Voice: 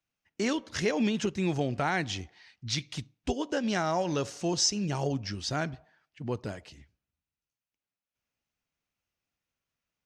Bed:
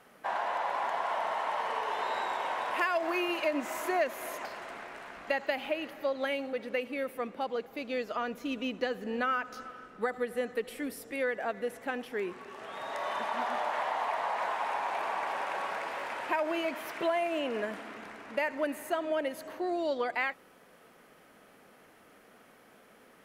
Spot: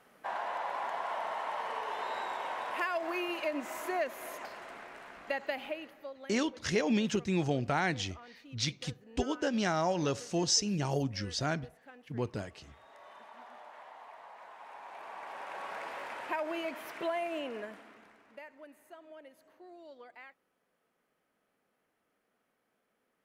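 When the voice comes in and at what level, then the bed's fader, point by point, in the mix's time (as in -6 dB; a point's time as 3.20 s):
5.90 s, -1.5 dB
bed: 5.63 s -4 dB
6.37 s -19 dB
14.48 s -19 dB
15.83 s -4.5 dB
17.36 s -4.5 dB
18.60 s -20.5 dB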